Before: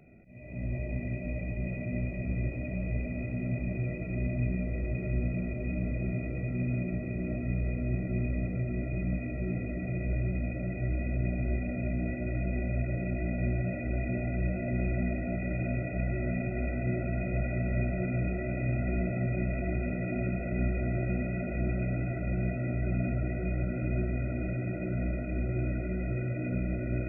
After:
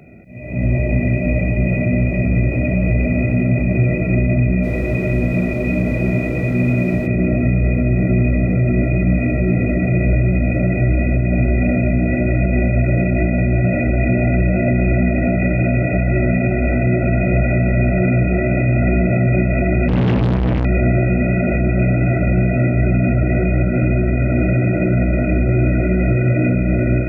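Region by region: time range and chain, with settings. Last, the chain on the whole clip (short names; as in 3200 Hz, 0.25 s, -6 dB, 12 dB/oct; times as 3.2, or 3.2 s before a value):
4.62–7.06 low shelf 140 Hz -8 dB + added noise brown -48 dBFS
19.88–20.65 tone controls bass +14 dB, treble -4 dB + tube stage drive 30 dB, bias 0.3 + Doppler distortion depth 0.44 ms
whole clip: HPF 53 Hz; AGC gain up to 4.5 dB; maximiser +20.5 dB; gain -6.5 dB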